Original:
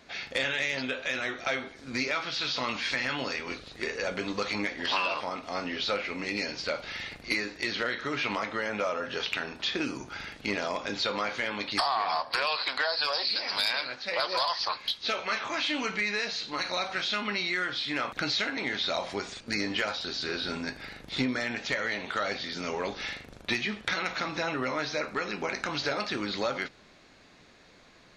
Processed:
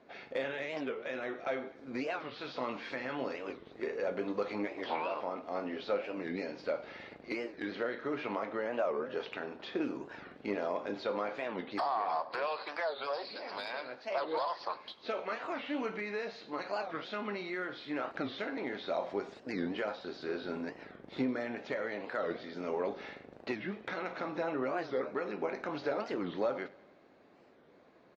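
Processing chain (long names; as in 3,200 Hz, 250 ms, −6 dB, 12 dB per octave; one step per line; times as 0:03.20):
resonant band-pass 450 Hz, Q 0.88
repeating echo 100 ms, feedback 55%, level −21 dB
wow of a warped record 45 rpm, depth 250 cents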